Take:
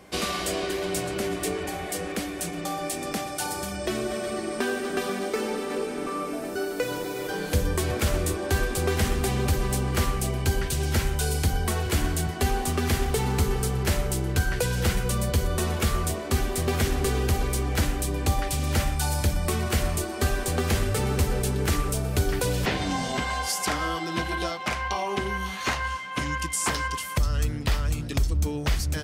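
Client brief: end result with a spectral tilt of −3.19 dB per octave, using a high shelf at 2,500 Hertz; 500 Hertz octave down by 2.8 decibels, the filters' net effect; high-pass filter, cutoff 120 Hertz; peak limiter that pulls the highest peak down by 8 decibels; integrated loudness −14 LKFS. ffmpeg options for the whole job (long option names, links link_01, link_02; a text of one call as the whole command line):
ffmpeg -i in.wav -af "highpass=120,equalizer=frequency=500:width_type=o:gain=-4,highshelf=frequency=2500:gain=7.5,volume=14dB,alimiter=limit=-3dB:level=0:latency=1" out.wav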